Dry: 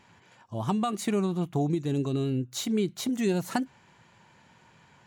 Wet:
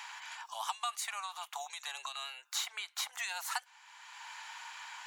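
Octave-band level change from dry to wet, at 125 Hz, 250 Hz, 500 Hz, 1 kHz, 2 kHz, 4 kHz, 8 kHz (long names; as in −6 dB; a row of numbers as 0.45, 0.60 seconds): below −40 dB, below −40 dB, −24.0 dB, −3.5 dB, +2.0 dB, +1.0 dB, 0.0 dB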